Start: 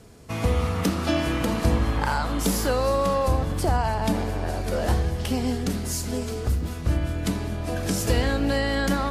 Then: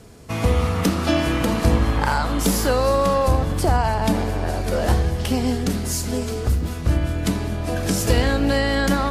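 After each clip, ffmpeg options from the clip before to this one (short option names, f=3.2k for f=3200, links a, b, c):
-af "aeval=exprs='0.355*(cos(1*acos(clip(val(0)/0.355,-1,1)))-cos(1*PI/2))+0.0562*(cos(2*acos(clip(val(0)/0.355,-1,1)))-cos(2*PI/2))+0.0112*(cos(4*acos(clip(val(0)/0.355,-1,1)))-cos(4*PI/2))':c=same,volume=4dB"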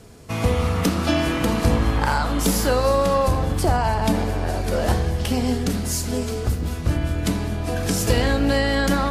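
-af "bandreject=f=65.37:t=h:w=4,bandreject=f=130.74:t=h:w=4,bandreject=f=196.11:t=h:w=4,bandreject=f=261.48:t=h:w=4,bandreject=f=326.85:t=h:w=4,bandreject=f=392.22:t=h:w=4,bandreject=f=457.59:t=h:w=4,bandreject=f=522.96:t=h:w=4,bandreject=f=588.33:t=h:w=4,bandreject=f=653.7:t=h:w=4,bandreject=f=719.07:t=h:w=4,bandreject=f=784.44:t=h:w=4,bandreject=f=849.81:t=h:w=4,bandreject=f=915.18:t=h:w=4,bandreject=f=980.55:t=h:w=4,bandreject=f=1.04592k:t=h:w=4,bandreject=f=1.11129k:t=h:w=4,bandreject=f=1.17666k:t=h:w=4,bandreject=f=1.24203k:t=h:w=4,bandreject=f=1.3074k:t=h:w=4,bandreject=f=1.37277k:t=h:w=4,bandreject=f=1.43814k:t=h:w=4,bandreject=f=1.50351k:t=h:w=4,bandreject=f=1.56888k:t=h:w=4,bandreject=f=1.63425k:t=h:w=4,bandreject=f=1.69962k:t=h:w=4,bandreject=f=1.76499k:t=h:w=4,bandreject=f=1.83036k:t=h:w=4,bandreject=f=1.89573k:t=h:w=4,bandreject=f=1.9611k:t=h:w=4,bandreject=f=2.02647k:t=h:w=4,bandreject=f=2.09184k:t=h:w=4,bandreject=f=2.15721k:t=h:w=4,bandreject=f=2.22258k:t=h:w=4"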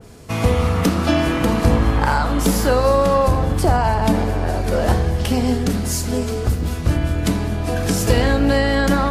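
-af "adynamicequalizer=threshold=0.0141:dfrequency=2200:dqfactor=0.7:tfrequency=2200:tqfactor=0.7:attack=5:release=100:ratio=0.375:range=2:mode=cutabove:tftype=highshelf,volume=3.5dB"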